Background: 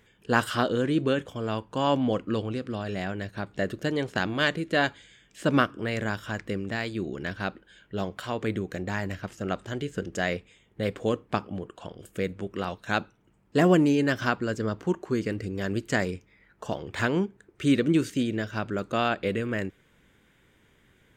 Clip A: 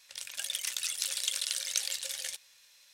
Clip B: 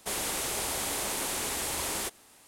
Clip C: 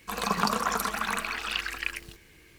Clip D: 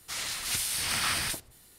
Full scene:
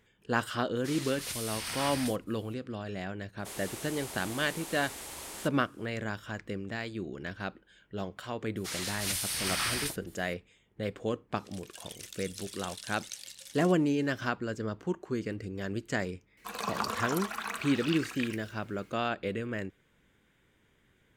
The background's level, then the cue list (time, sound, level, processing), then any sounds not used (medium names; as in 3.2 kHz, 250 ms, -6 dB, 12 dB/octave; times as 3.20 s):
background -6 dB
0.76 s: add D -7.5 dB
3.39 s: add B -10.5 dB
8.56 s: add D -2.5 dB
11.36 s: add A -11.5 dB + tape noise reduction on one side only encoder only
16.37 s: add C -6.5 dB + high-pass 210 Hz 6 dB/octave